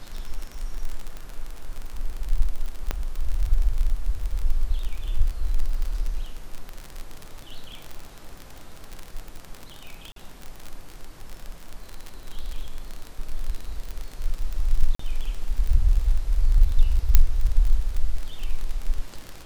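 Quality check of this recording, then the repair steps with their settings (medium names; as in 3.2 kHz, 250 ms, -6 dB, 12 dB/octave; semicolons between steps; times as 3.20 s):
crackle 37 per s -26 dBFS
2.91 s: pop -11 dBFS
10.12–10.16 s: dropout 43 ms
14.95–14.99 s: dropout 44 ms
17.15 s: pop -1 dBFS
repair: de-click; interpolate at 10.12 s, 43 ms; interpolate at 14.95 s, 44 ms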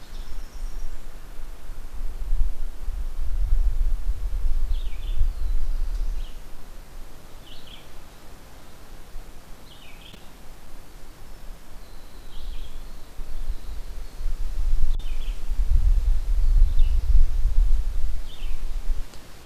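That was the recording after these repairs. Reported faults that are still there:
nothing left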